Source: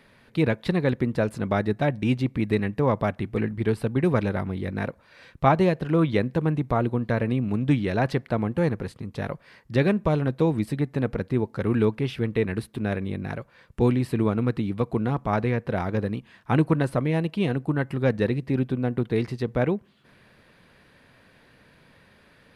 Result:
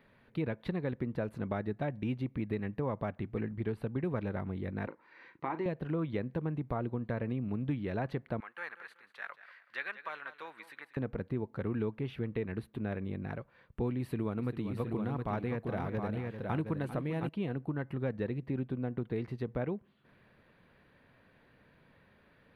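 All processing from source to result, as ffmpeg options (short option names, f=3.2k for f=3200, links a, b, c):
-filter_complex "[0:a]asettb=1/sr,asplit=3[a][b][c];[a]atrim=end=4.874[d];[b]atrim=start=4.87:end=5.66,asetpts=PTS-STARTPTS,afade=t=in:d=0.004:c=qsin,afade=t=out:st=0.786:d=0.004:c=qsin,acompressor=threshold=-23dB:ratio=3:attack=3.2:release=140:knee=1:detection=peak,highpass=280,equalizer=f=330:t=q:w=4:g=9,equalizer=f=620:t=q:w=4:g=-9,equalizer=f=950:t=q:w=4:g=7,equalizer=f=2k:t=q:w=4:g=8,equalizer=f=3.4k:t=q:w=4:g=-4,lowpass=f=6.9k:w=0.5412,lowpass=f=6.9k:w=1.3066,asplit=2[e][f];[f]adelay=38,volume=-12dB[g];[e][g]amix=inputs=2:normalize=0,atrim=end_sample=34839[h];[c]atrim=start=5.656[i];[d][h]acrossfade=d=0.004:c1=hsin:c2=qsin[j];[j][i]acrossfade=d=0.004:c1=qsin:c2=hsin,asettb=1/sr,asplit=3[k][l][m];[k]atrim=end=8.404[n];[l]atrim=start=8.4:end=10.97,asetpts=PTS-STARTPTS,afade=t=in:d=0.004:c=qsin,afade=t=out:st=2.566:d=0.004:c=qsin,highpass=f=1.5k:t=q:w=2,aecho=1:1:188|376|564:0.188|0.0584|0.0181,atrim=end_sample=113337[o];[m]atrim=start=10.966[p];[n][o]acrossfade=d=0.004:c1=hsin:c2=qsin[q];[q][p]acrossfade=d=0.004:c1=qsin:c2=hsin,asettb=1/sr,asplit=3[r][s][t];[r]atrim=end=13.994[u];[s]atrim=start=13.99:end=17.29,asetpts=PTS-STARTPTS,afade=t=in:d=0.004:c=qsin,afade=t=out:st=3.296:d=0.004:c=qsin,highshelf=f=4.5k:g=10,aecho=1:1:394|716:0.224|0.501,atrim=end_sample=145530[v];[t]atrim=start=17.286[w];[u][v]acrossfade=d=0.004:c1=hsin:c2=qsin[x];[x][w]acrossfade=d=0.004:c1=qsin:c2=hsin,acompressor=threshold=-25dB:ratio=2.5,equalizer=f=7.7k:w=0.67:g=-14.5,bandreject=f=5.1k:w=11,volume=-7dB"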